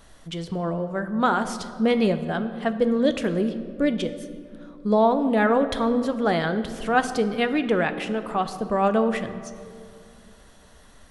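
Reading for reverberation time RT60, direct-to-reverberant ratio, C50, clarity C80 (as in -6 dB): 2.5 s, 9.0 dB, 11.5 dB, 12.5 dB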